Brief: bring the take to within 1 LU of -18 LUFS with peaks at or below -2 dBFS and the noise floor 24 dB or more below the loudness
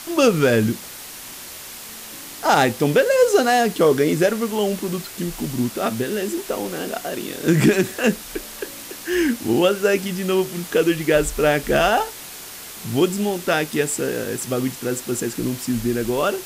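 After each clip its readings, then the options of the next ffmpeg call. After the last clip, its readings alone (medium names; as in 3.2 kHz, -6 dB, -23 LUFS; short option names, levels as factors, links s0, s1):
noise floor -37 dBFS; noise floor target -45 dBFS; loudness -20.5 LUFS; peak level -5.0 dBFS; loudness target -18.0 LUFS
-> -af "afftdn=nr=8:nf=-37"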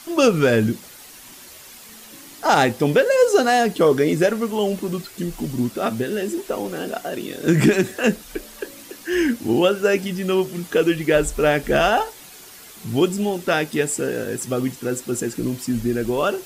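noise floor -43 dBFS; noise floor target -45 dBFS
-> -af "afftdn=nr=6:nf=-43"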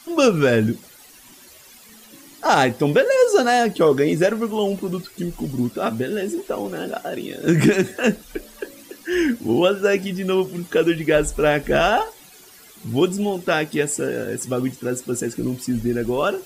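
noise floor -47 dBFS; loudness -20.5 LUFS; peak level -5.0 dBFS; loudness target -18.0 LUFS
-> -af "volume=1.33"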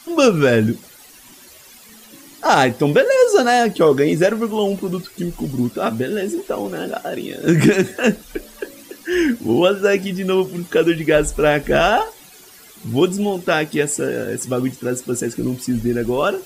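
loudness -18.0 LUFS; peak level -2.5 dBFS; noise floor -44 dBFS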